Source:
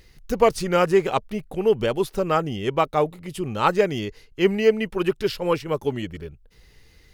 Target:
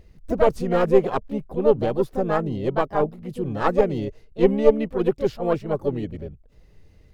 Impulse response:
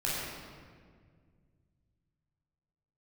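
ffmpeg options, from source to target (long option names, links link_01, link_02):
-filter_complex "[0:a]aeval=exprs='0.668*(cos(1*acos(clip(val(0)/0.668,-1,1)))-cos(1*PI/2))+0.299*(cos(2*acos(clip(val(0)/0.668,-1,1)))-cos(2*PI/2))+0.0133*(cos(4*acos(clip(val(0)/0.668,-1,1)))-cos(4*PI/2))+0.00422*(cos(5*acos(clip(val(0)/0.668,-1,1)))-cos(5*PI/2))+0.0168*(cos(7*acos(clip(val(0)/0.668,-1,1)))-cos(7*PI/2))':channel_layout=same,tiltshelf=frequency=1100:gain=8,asplit=2[link_01][link_02];[link_02]asetrate=58866,aresample=44100,atempo=0.749154,volume=-6dB[link_03];[link_01][link_03]amix=inputs=2:normalize=0,volume=-5dB"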